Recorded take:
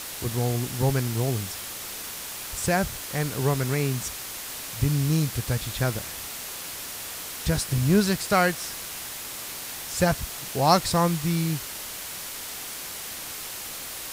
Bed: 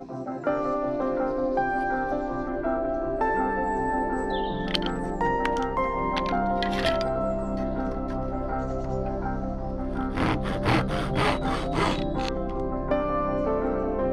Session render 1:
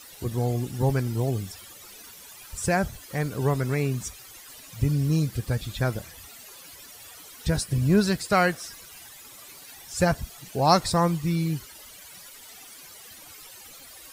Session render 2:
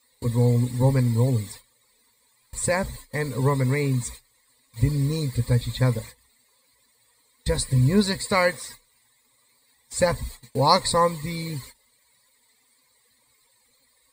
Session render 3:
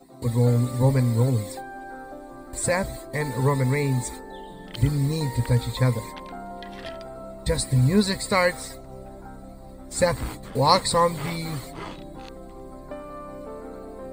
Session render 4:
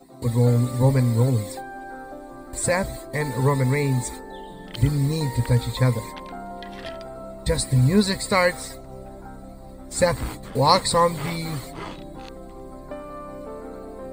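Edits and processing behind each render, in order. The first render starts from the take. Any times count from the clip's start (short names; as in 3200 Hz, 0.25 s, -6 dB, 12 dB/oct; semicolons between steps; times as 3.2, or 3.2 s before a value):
denoiser 15 dB, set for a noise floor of -36 dBFS
gate -41 dBFS, range -20 dB; ripple EQ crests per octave 0.98, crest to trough 14 dB
add bed -12 dB
gain +1.5 dB; limiter -3 dBFS, peak gain reduction 1 dB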